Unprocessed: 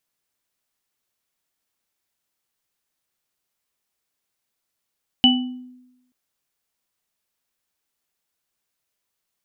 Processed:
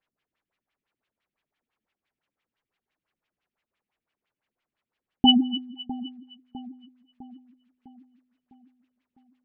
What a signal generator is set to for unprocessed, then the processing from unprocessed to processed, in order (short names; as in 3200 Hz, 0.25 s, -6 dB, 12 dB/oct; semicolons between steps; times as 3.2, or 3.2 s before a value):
sine partials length 0.88 s, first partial 251 Hz, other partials 776/2970 Hz, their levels -9/4 dB, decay 0.95 s, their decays 0.43/0.35 s, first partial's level -12.5 dB
LFO low-pass sine 5.9 Hz 210–3000 Hz; split-band echo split 1300 Hz, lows 0.654 s, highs 0.258 s, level -15 dB